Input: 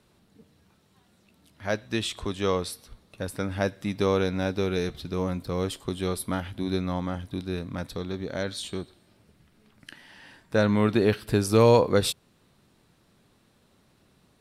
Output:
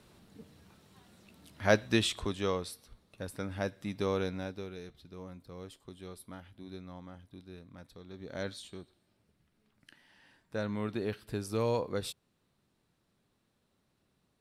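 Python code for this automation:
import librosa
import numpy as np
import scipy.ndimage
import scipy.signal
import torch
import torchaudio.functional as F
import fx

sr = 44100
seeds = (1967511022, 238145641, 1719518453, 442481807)

y = fx.gain(x, sr, db=fx.line((1.81, 3.0), (2.6, -8.0), (4.27, -8.0), (4.77, -18.0), (8.02, -18.0), (8.46, -6.0), (8.62, -13.0)))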